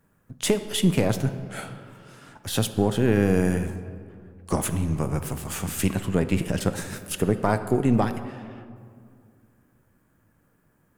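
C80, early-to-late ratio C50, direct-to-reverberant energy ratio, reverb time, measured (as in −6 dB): 12.0 dB, 11.0 dB, 9.5 dB, 2.2 s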